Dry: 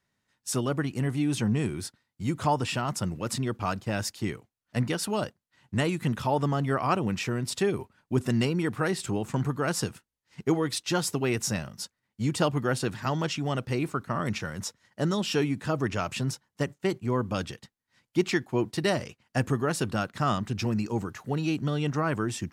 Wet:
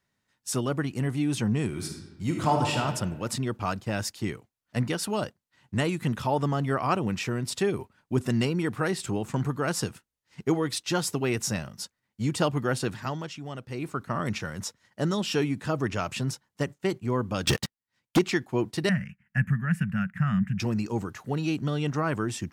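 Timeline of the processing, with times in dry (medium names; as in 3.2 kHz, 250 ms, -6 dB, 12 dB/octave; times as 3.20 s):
1.67–2.79 s: reverb throw, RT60 1.2 s, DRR 1.5 dB
12.91–14.05 s: dip -8.5 dB, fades 0.36 s
17.47–18.19 s: waveshaping leveller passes 5
18.89–20.60 s: FFT filter 110 Hz 0 dB, 190 Hz +11 dB, 340 Hz -28 dB, 580 Hz -18 dB, 1.1 kHz -13 dB, 1.7 kHz +6 dB, 2.7 kHz -4 dB, 3.9 kHz -26 dB, 13 kHz -9 dB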